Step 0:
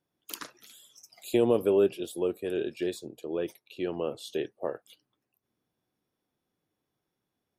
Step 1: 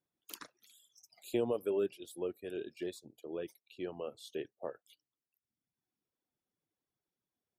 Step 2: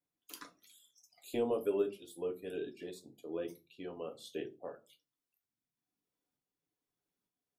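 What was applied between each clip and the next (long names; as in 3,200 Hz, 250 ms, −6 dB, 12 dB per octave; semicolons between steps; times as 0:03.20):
reverb reduction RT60 1.2 s; level −8 dB
shaped tremolo saw up 1.1 Hz, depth 50%; convolution reverb RT60 0.30 s, pre-delay 4 ms, DRR 2.5 dB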